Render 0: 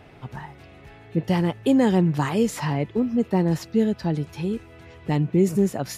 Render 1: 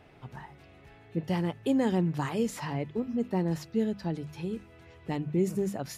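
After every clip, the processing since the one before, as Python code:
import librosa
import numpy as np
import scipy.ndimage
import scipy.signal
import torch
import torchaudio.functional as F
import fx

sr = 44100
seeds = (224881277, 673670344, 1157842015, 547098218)

y = fx.hum_notches(x, sr, base_hz=50, count=5)
y = F.gain(torch.from_numpy(y), -7.5).numpy()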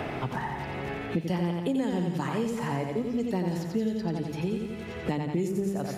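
y = fx.echo_feedback(x, sr, ms=87, feedback_pct=52, wet_db=-4.5)
y = fx.band_squash(y, sr, depth_pct=100)
y = F.gain(torch.from_numpy(y), -1.5).numpy()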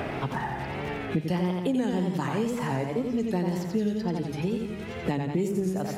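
y = fx.wow_flutter(x, sr, seeds[0], rate_hz=2.1, depth_cents=88.0)
y = F.gain(torch.from_numpy(y), 1.5).numpy()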